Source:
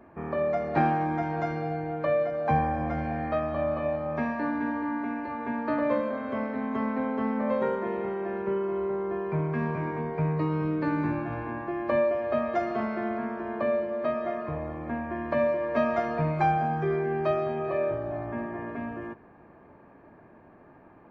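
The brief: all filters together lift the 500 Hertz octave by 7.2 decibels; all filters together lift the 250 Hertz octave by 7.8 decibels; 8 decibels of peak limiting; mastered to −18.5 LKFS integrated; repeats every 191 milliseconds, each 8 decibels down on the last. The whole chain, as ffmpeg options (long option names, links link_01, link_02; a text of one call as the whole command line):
ffmpeg -i in.wav -af "equalizer=frequency=250:width_type=o:gain=7.5,equalizer=frequency=500:width_type=o:gain=7.5,alimiter=limit=-14.5dB:level=0:latency=1,aecho=1:1:191|382|573|764|955:0.398|0.159|0.0637|0.0255|0.0102,volume=4.5dB" out.wav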